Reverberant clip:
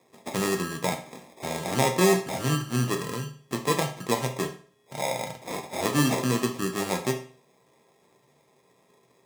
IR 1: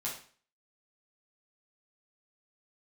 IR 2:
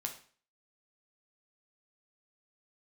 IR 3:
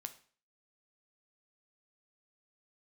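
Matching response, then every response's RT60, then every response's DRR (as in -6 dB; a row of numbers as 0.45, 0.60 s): 2; 0.45, 0.45, 0.45 s; -6.0, 2.5, 8.0 dB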